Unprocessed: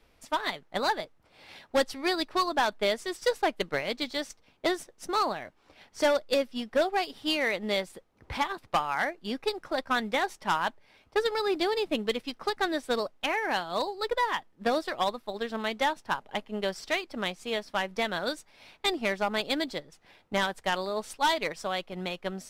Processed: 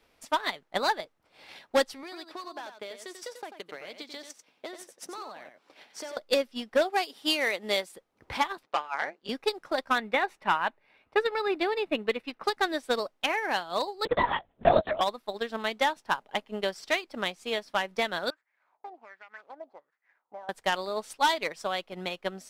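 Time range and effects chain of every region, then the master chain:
0:02.03–0:06.17: high-pass filter 190 Hz + downward compressor 5 to 1, threshold −39 dBFS + single-tap delay 91 ms −7 dB
0:06.90–0:07.96: high-pass filter 210 Hz + parametric band 11,000 Hz +5.5 dB 1.7 octaves
0:08.63–0:09.29: band-pass filter 290–6,300 Hz + amplitude modulation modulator 150 Hz, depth 65%
0:09.98–0:12.44: high shelf with overshoot 4,000 Hz −9 dB, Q 1.5 + notch filter 3,200 Hz, Q 7.4
0:14.05–0:15.01: parametric band 660 Hz +12.5 dB 0.35 octaves + linear-prediction vocoder at 8 kHz whisper
0:18.30–0:20.49: running median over 15 samples + downward compressor 12 to 1, threshold −30 dBFS + LFO wah 1.3 Hz 690–2,000 Hz, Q 4.2
whole clip: low-shelf EQ 150 Hz −11 dB; transient designer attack +3 dB, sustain −3 dB

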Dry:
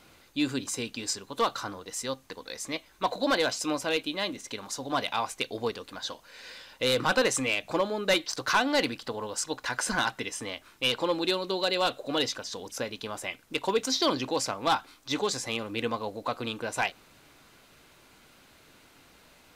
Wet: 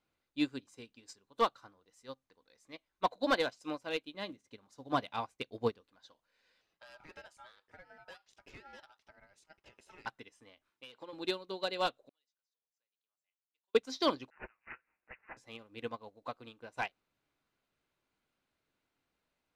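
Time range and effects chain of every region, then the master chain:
0:04.14–0:05.81: high-pass filter 48 Hz + downward expander −45 dBFS + low-shelf EQ 320 Hz +7.5 dB
0:06.61–0:10.06: downward compressor 12 to 1, threshold −27 dBFS + ring modulation 1,100 Hz
0:10.70–0:11.13: high-pass filter 220 Hz 6 dB per octave + downward compressor 12 to 1, threshold −27 dBFS
0:12.09–0:13.75: resonant band-pass 7,600 Hz, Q 6.8 + high-frequency loss of the air 230 metres
0:14.30–0:15.37: Chebyshev high-pass filter 1,800 Hz, order 3 + comb filter 7.2 ms, depth 58% + bad sample-rate conversion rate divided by 8×, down none, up filtered
whole clip: high-shelf EQ 5,100 Hz −7.5 dB; expander for the loud parts 2.5 to 1, over −39 dBFS

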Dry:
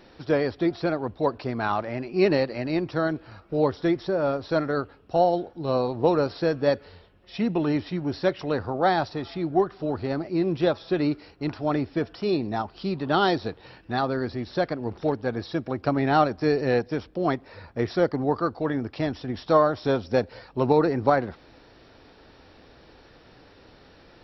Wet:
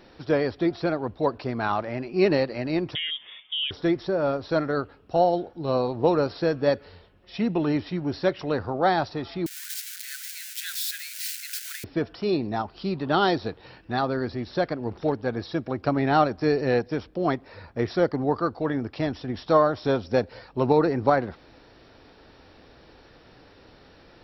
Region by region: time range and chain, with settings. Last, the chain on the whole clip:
0:02.95–0:03.71: downward compressor 4 to 1, threshold −25 dBFS + voice inversion scrambler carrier 3,500 Hz
0:09.46–0:11.84: spike at every zero crossing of −20.5 dBFS + Chebyshev high-pass filter 1,500 Hz, order 6
whole clip: no processing

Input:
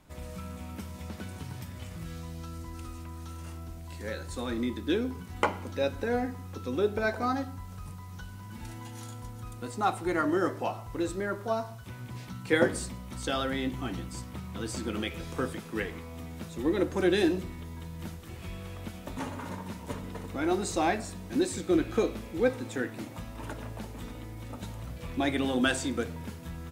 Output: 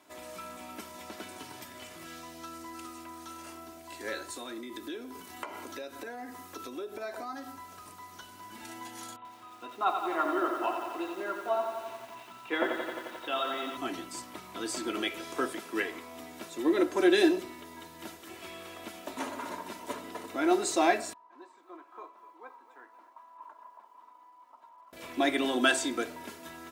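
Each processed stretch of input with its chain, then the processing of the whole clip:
0:04.30–0:07.52: high-shelf EQ 6,400 Hz +6 dB + downward compressor 12 to 1, threshold −36 dBFS
0:09.16–0:13.77: Chebyshev low-pass with heavy ripple 3,900 Hz, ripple 9 dB + feedback echo at a low word length 88 ms, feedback 80%, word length 9 bits, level −6 dB
0:21.13–0:24.93: resonant band-pass 1,000 Hz, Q 10 + feedback echo at a low word length 249 ms, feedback 55%, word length 11 bits, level −15 dB
whole clip: high-pass filter 350 Hz 12 dB per octave; comb filter 3 ms, depth 53%; level +2 dB

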